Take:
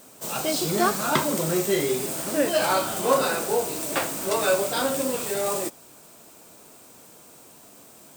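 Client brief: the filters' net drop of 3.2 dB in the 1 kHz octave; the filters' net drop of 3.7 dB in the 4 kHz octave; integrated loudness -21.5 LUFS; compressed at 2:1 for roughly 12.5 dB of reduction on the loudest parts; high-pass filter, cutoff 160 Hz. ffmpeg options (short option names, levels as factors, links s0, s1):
-af "highpass=160,equalizer=f=1000:t=o:g=-4,equalizer=f=4000:t=o:g=-4.5,acompressor=threshold=0.00794:ratio=2,volume=5.31"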